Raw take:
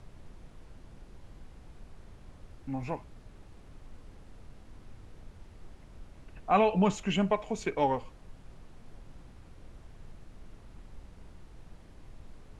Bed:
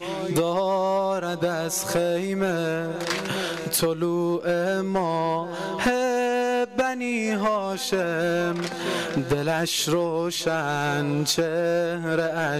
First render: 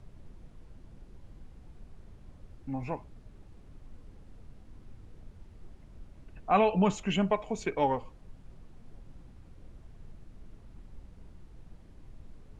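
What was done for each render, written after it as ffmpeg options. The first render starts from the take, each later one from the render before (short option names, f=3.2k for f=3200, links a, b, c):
-af "afftdn=nr=6:nf=-53"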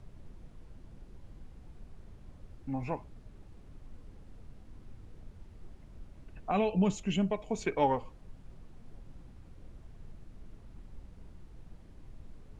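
-filter_complex "[0:a]asettb=1/sr,asplit=3[a][b][c];[a]atrim=end=6.514[d];[b]atrim=start=6.51:end=7.51,asetpts=PTS-STARTPTS,afade=t=in:d=0.004:c=qsin,afade=t=out:st=0.996:d=0.004:c=qsin,equalizer=f=1.2k:t=o:w=2.2:g=-10.5[e];[c]atrim=start=7.506[f];[d][e]acrossfade=d=0.004:c1=hsin:c2=qsin[g];[g][f]acrossfade=d=0.004:c1=qsin:c2=hsin"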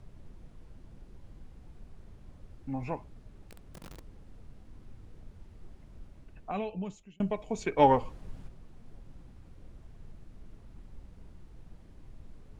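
-filter_complex "[0:a]asettb=1/sr,asplit=3[a][b][c];[a]atrim=end=3.434[d];[b]atrim=start=3.43:end=4.04,asetpts=PTS-STARTPTS,afade=t=in:d=0.004:c=qsin,afade=t=out:st=0.606:d=0.004:c=qsin,aeval=exprs='(mod(133*val(0)+1,2)-1)/133':c=same[e];[c]atrim=start=4.036[f];[d][e]acrossfade=d=0.004:c1=hsin:c2=qsin[g];[g][f]acrossfade=d=0.004:c1=qsin:c2=hsin,asplit=3[h][i][j];[h]afade=t=out:st=7.78:d=0.02[k];[i]acontrast=64,afade=t=in:st=7.78:d=0.02,afade=t=out:st=8.47:d=0.02[l];[j]afade=t=in:st=8.47:d=0.02[m];[k][l][m]amix=inputs=3:normalize=0,asplit=2[n][o];[n]atrim=end=7.2,asetpts=PTS-STARTPTS,afade=t=out:st=6.05:d=1.15[p];[o]atrim=start=7.2,asetpts=PTS-STARTPTS,afade=t=in:d=0.004:c=hsin[q];[p][q]concat=n=2:v=0:a=1"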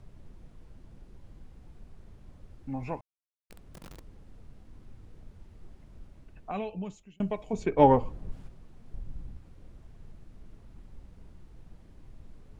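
-filter_complex "[0:a]asettb=1/sr,asplit=3[a][b][c];[a]atrim=end=7.534[d];[b]atrim=start=7.53:end=8.32,asetpts=PTS-STARTPTS,afade=t=in:d=0.004:c=qsin,afade=t=out:st=0.786:d=0.004:c=qsin,tiltshelf=f=970:g=5.5[e];[c]atrim=start=8.316[f];[d][e]acrossfade=d=0.004:c1=hsin:c2=qsin[g];[g][f]acrossfade=d=0.004:c1=qsin:c2=hsin,asettb=1/sr,asplit=3[h][i][j];[h]atrim=end=8.944[k];[i]atrim=start=8.94:end=9.37,asetpts=PTS-STARTPTS,afade=t=in:d=0.004:c=qsin,afade=t=out:st=0.426:d=0.004:c=qsin,lowshelf=f=160:g=11.5[l];[j]atrim=start=9.366[m];[k][l]acrossfade=d=0.004:c1=hsin:c2=qsin[n];[n][m]acrossfade=d=0.004:c1=qsin:c2=hsin,asplit=3[o][p][q];[o]atrim=end=3.01,asetpts=PTS-STARTPTS,afade=t=out:st=3.006:d=0.004:c=hsin[r];[p]atrim=start=3.01:end=3.5,asetpts=PTS-STARTPTS,volume=0[s];[q]atrim=start=3.5,asetpts=PTS-STARTPTS,afade=t=in:d=0.004:c=hsin[t];[r][s][t]concat=n=3:v=0:a=1"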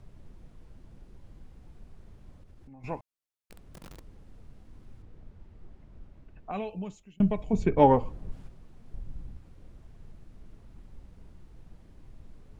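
-filter_complex "[0:a]asettb=1/sr,asplit=3[a][b][c];[a]atrim=end=2.404[d];[b]atrim=start=2.4:end=2.84,asetpts=PTS-STARTPTS,afade=t=in:d=0.004:c=qsin,afade=t=out:st=0.436:d=0.004:c=qsin,acompressor=threshold=-47dB:ratio=8:attack=3.2:release=140:knee=1:detection=peak[e];[c]atrim=start=2.836[f];[d][e]acrossfade=d=0.004:c1=hsin:c2=qsin[g];[g][f]acrossfade=d=0.004:c1=qsin:c2=hsin,asettb=1/sr,asplit=3[h][i][j];[h]atrim=end=5.024[k];[i]atrim=start=5.02:end=6.53,asetpts=PTS-STARTPTS,afade=t=in:d=0.004:c=qsin,afade=t=out:st=1.506:d=0.004:c=qsin,lowpass=f=2.7k:p=1[l];[j]atrim=start=6.526[m];[k][l]acrossfade=d=0.004:c1=hsin:c2=qsin[n];[n][m]acrossfade=d=0.004:c1=qsin:c2=hsin,asettb=1/sr,asplit=3[o][p][q];[o]atrim=end=7.174[r];[p]atrim=start=7.17:end=7.79,asetpts=PTS-STARTPTS,afade=t=in:d=0.004:c=qsin,afade=t=out:st=0.616:d=0.004:c=qsin,bass=f=250:g=11,treble=f=4k:g=-2[s];[q]atrim=start=7.786[t];[r][s]acrossfade=d=0.004:c1=hsin:c2=qsin[u];[u][t]acrossfade=d=0.004:c1=qsin:c2=hsin"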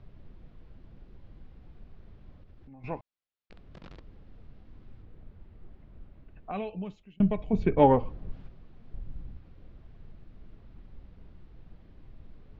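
-af "lowpass=f=4.3k:w=0.5412,lowpass=f=4.3k:w=1.3066,equalizer=f=910:t=o:w=0.25:g=-2.5"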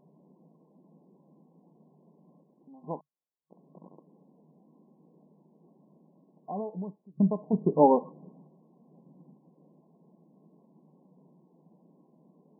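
-af "afftfilt=real='re*between(b*sr/4096,140,1100)':imag='im*between(b*sr/4096,140,1100)':win_size=4096:overlap=0.75"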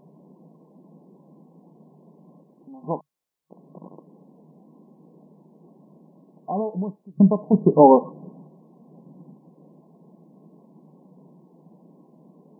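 -af "volume=9dB,alimiter=limit=-1dB:level=0:latency=1"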